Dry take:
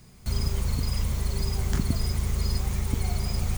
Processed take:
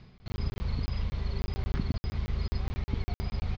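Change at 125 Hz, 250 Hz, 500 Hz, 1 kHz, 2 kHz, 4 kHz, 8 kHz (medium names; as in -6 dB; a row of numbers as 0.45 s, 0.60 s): -5.5 dB, -4.5 dB, -5.0 dB, -5.0 dB, -5.0 dB, -9.5 dB, under -20 dB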